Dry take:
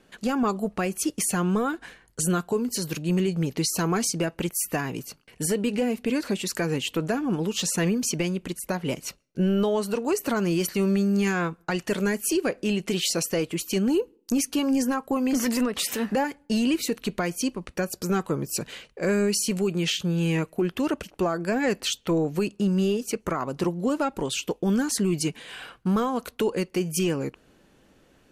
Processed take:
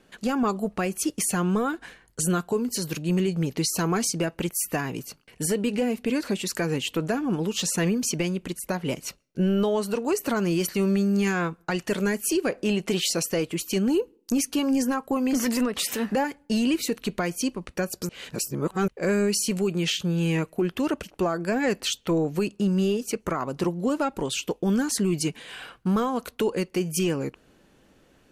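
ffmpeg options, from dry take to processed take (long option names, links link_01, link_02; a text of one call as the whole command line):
ffmpeg -i in.wav -filter_complex "[0:a]asettb=1/sr,asplit=3[link_01][link_02][link_03];[link_01]atrim=end=12.524[link_04];[link_02]atrim=start=12.52:end=13.04,asetpts=PTS-STARTPTS,afade=type=in:duration=0.004:curve=qsin,afade=type=out:start_time=0.516:duration=0.004:curve=qsin,equalizer=frequency=800:width=0.85:gain=5[link_05];[link_03]atrim=start=13.036[link_06];[link_04][link_05]acrossfade=duration=0.004:curve1=hsin:curve2=qsin[link_07];[link_07][link_06]acrossfade=duration=0.004:curve1=qsin:curve2=hsin,asplit=3[link_08][link_09][link_10];[link_08]atrim=end=18.092[link_11];[link_09]atrim=start=18.088:end=18.882,asetpts=PTS-STARTPTS,areverse[link_12];[link_10]atrim=start=18.878[link_13];[link_11][link_12]acrossfade=duration=0.004:curve1=hsin:curve2=hsin[link_14];[link_14][link_13]acrossfade=duration=0.004:curve1=hsin:curve2=hsin" out.wav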